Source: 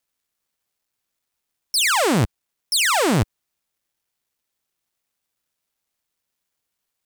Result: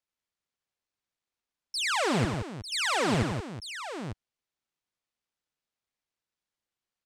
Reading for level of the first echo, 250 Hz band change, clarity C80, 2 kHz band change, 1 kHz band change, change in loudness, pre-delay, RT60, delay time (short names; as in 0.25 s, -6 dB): -8.0 dB, -7.0 dB, none, -8.0 dB, -7.5 dB, -10.0 dB, none, none, 92 ms